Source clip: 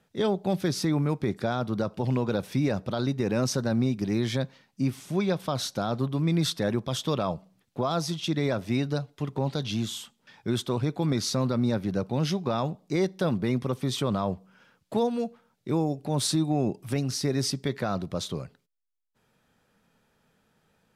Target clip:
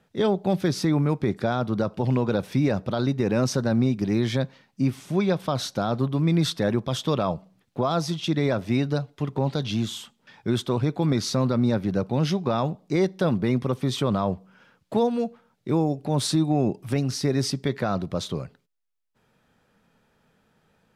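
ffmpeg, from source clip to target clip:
-af "highshelf=f=4.8k:g=-6,volume=3.5dB"

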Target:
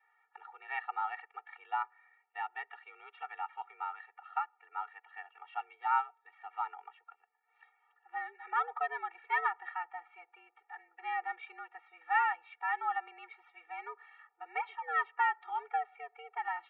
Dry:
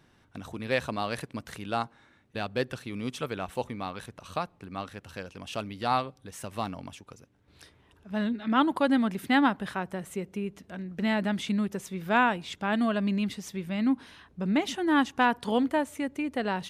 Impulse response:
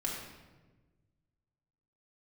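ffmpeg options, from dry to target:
-af "highpass=f=600:t=q:w=0.5412,highpass=f=600:t=q:w=1.307,lowpass=f=2.2k:t=q:w=0.5176,lowpass=f=2.2k:t=q:w=0.7071,lowpass=f=2.2k:t=q:w=1.932,afreqshift=160,adynamicequalizer=threshold=0.00631:dfrequency=1100:dqfactor=5:tfrequency=1100:tqfactor=5:attack=5:release=100:ratio=0.375:range=2.5:mode=cutabove:tftype=bell,afftfilt=real='re*eq(mod(floor(b*sr/1024/240),2),1)':imag='im*eq(mod(floor(b*sr/1024/240),2),1)':win_size=1024:overlap=0.75"

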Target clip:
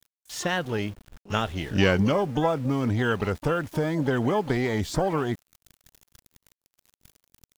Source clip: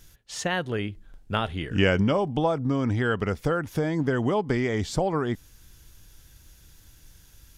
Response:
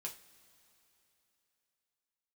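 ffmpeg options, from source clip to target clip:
-filter_complex "[0:a]aeval=exprs='val(0)*gte(abs(val(0)),0.0075)':c=same,asplit=2[a][b];[b]asetrate=88200,aresample=44100,atempo=0.5,volume=-14dB[c];[a][c]amix=inputs=2:normalize=0"

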